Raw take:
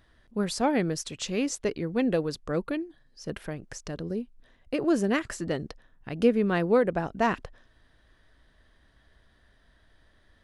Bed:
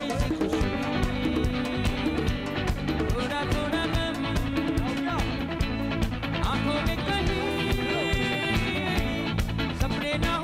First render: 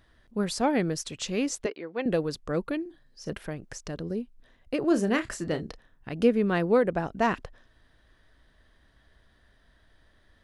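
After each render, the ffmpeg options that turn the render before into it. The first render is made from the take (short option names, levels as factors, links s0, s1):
-filter_complex "[0:a]asettb=1/sr,asplit=3[s0][s1][s2];[s0]atrim=end=1.664[s3];[s1]atrim=start=1.66:end=2.06,asetpts=PTS-STARTPTS,afade=t=in:d=0.004:c=qsin,afade=t=out:st=0.396:d=0.004:c=qsin,highpass=470,lowpass=3600[s4];[s2]atrim=start=2.056[s5];[s3][s4]acrossfade=d=0.004:c1=hsin:c2=qsin[s6];[s6][s5]acrossfade=d=0.004:c1=qsin:c2=hsin,asettb=1/sr,asplit=3[s7][s8][s9];[s7]atrim=end=2.814[s10];[s8]atrim=start=2.81:end=3.33,asetpts=PTS-STARTPTS,afade=t=in:d=0.004:c=qsin,afade=t=out:st=0.516:d=0.004:c=qsin,asplit=2[s11][s12];[s12]adelay=45,volume=0.299[s13];[s11][s13]amix=inputs=2:normalize=0,atrim=end_sample=22932[s14];[s9]atrim=start=3.326[s15];[s10][s14]acrossfade=d=0.004:c1=hsin:c2=qsin[s16];[s16][s15]acrossfade=d=0.004:c1=qsin:c2=hsin,asettb=1/sr,asplit=3[s17][s18][s19];[s17]atrim=end=4.884[s20];[s18]atrim=start=4.88:end=6.13,asetpts=PTS-STARTPTS,afade=t=in:d=0.004:c=qsin,afade=t=out:st=1.246:d=0.004:c=qsin,asplit=2[s21][s22];[s22]adelay=32,volume=0.316[s23];[s21][s23]amix=inputs=2:normalize=0,atrim=end_sample=55125[s24];[s19]atrim=start=6.126[s25];[s20][s24]acrossfade=d=0.004:c1=hsin:c2=qsin[s26];[s26][s25]acrossfade=d=0.004:c1=qsin:c2=hsin"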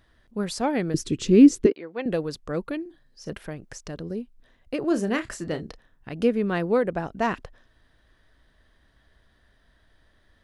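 -filter_complex "[0:a]asettb=1/sr,asplit=3[s0][s1][s2];[s0]atrim=end=0.944[s3];[s1]atrim=start=0.94:end=1.72,asetpts=PTS-STARTPTS,afade=t=in:d=0.004:c=qsin,afade=t=out:st=0.776:d=0.004:c=qsin,lowshelf=f=480:t=q:w=3:g=11.5[s4];[s2]atrim=start=1.716[s5];[s3][s4]acrossfade=d=0.004:c1=hsin:c2=qsin[s6];[s6][s5]acrossfade=d=0.004:c1=qsin:c2=hsin"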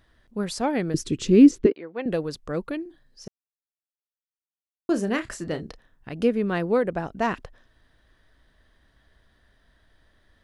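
-filter_complex "[0:a]asettb=1/sr,asplit=3[s0][s1][s2];[s0]atrim=end=1.514[s3];[s1]atrim=start=1.51:end=2.08,asetpts=PTS-STARTPTS,afade=t=in:d=0.004:c=qsin,afade=t=out:st=0.566:d=0.004:c=qsin,equalizer=f=9800:w=0.71:g=-13[s4];[s2]atrim=start=2.076[s5];[s3][s4]acrossfade=d=0.004:c1=hsin:c2=qsin[s6];[s6][s5]acrossfade=d=0.004:c1=qsin:c2=hsin,asplit=3[s7][s8][s9];[s7]atrim=end=3.28,asetpts=PTS-STARTPTS,afade=t=out:st=3.276:d=0.004:c=hsin[s10];[s8]atrim=start=3.28:end=4.89,asetpts=PTS-STARTPTS,volume=0[s11];[s9]atrim=start=4.89,asetpts=PTS-STARTPTS,afade=t=in:d=0.004:c=hsin[s12];[s10][s11][s12]concat=n=3:v=0:a=1"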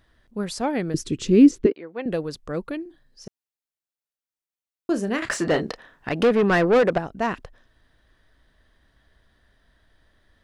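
-filter_complex "[0:a]asettb=1/sr,asplit=3[s0][s1][s2];[s0]atrim=end=5.224[s3];[s1]atrim=start=5.22:end=6.98,asetpts=PTS-STARTPTS,afade=t=in:d=0.004:c=qsin,afade=t=out:st=1.756:d=0.004:c=qsin,asplit=2[s4][s5];[s5]highpass=f=720:p=1,volume=15.8,asoftclip=type=tanh:threshold=0.335[s6];[s4][s6]amix=inputs=2:normalize=0,lowpass=f=2500:p=1,volume=0.501[s7];[s2]atrim=start=6.976[s8];[s3][s7]acrossfade=d=0.004:c1=hsin:c2=qsin[s9];[s9][s8]acrossfade=d=0.004:c1=qsin:c2=hsin"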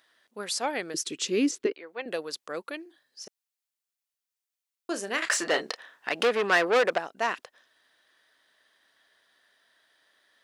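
-af "highpass=440,tiltshelf=f=1500:g=-4.5"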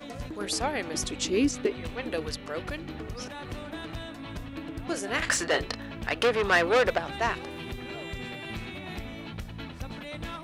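-filter_complex "[1:a]volume=0.266[s0];[0:a][s0]amix=inputs=2:normalize=0"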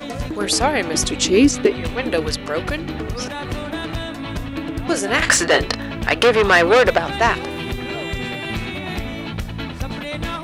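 -af "volume=3.76,alimiter=limit=0.794:level=0:latency=1"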